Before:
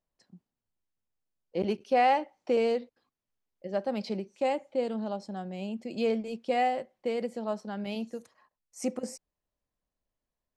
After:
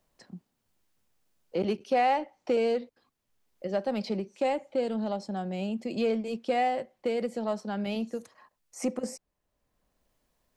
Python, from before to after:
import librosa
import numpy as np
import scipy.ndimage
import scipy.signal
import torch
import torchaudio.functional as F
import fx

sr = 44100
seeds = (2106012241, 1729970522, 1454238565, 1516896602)

p1 = 10.0 ** (-32.0 / 20.0) * np.tanh(x / 10.0 ** (-32.0 / 20.0))
p2 = x + (p1 * librosa.db_to_amplitude(-9.5))
y = fx.band_squash(p2, sr, depth_pct=40)